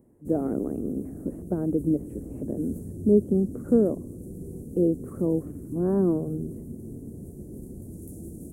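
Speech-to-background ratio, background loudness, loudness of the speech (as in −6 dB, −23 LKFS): 12.5 dB, −39.5 LKFS, −27.0 LKFS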